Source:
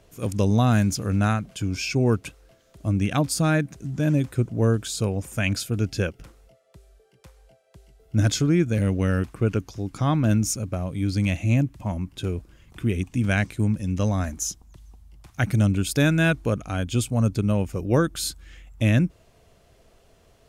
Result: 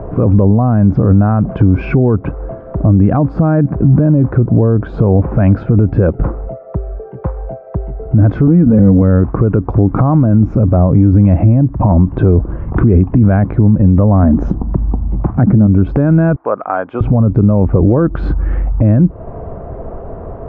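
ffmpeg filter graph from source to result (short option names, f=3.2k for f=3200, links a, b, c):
-filter_complex "[0:a]asettb=1/sr,asplit=3[a][b][c];[a]atrim=end=8.474[d];[b]atrim=start=8.47:end=9.02,asetpts=PTS-STARTPTS,afade=t=in:d=0.004:c=qsin,afade=t=out:st=0.546:d=0.004:c=qsin,equalizer=f=110:t=o:w=2.8:g=8,aecho=1:1:4.1:0.78,atrim=end_sample=24255,acompressor=threshold=-17dB:ratio=6:attack=3.2:release=140:knee=1:detection=peak[e];[c]atrim=start=9.016[f];[d][e]acrossfade=d=0.004:c1=hsin:c2=qsin[g];[g][f]acrossfade=d=0.004:c1=qsin:c2=hsin,asettb=1/sr,asplit=3[h][i][j];[h]atrim=end=14.234[k];[i]atrim=start=14.23:end=15.67,asetpts=PTS-STARTPTS,afade=t=in:d=0.004:c=qsin,afade=t=out:st=1.436:d=0.004:c=qsin,lowpass=12k,equalizer=f=230:w=0.87:g=9.5[l];[j]atrim=start=15.666[m];[k][l]acrossfade=d=0.004:c1=hsin:c2=qsin[n];[n][m]acrossfade=d=0.004:c1=qsin:c2=hsin,asettb=1/sr,asplit=3[o][p][q];[o]atrim=end=16.364[r];[p]atrim=start=16.36:end=17.01,asetpts=PTS-STARTPTS,afade=t=in:d=0.004:c=qsin,afade=t=out:st=0.646:d=0.004:c=qsin,highpass=990,highshelf=f=2.9k:g=-9.5,acompressor=threshold=-48dB:ratio=1.5:attack=3.2:release=140:knee=1:detection=peak[s];[q]atrim=start=17.006[t];[r][s]acrossfade=d=0.004:c1=hsin:c2=qsin[u];[u][t]acrossfade=d=0.004:c1=qsin:c2=hsin,lowpass=f=1.1k:w=0.5412,lowpass=f=1.1k:w=1.3066,acompressor=threshold=-30dB:ratio=6,alimiter=level_in=32.5dB:limit=-1dB:release=50:level=0:latency=1,volume=-1dB"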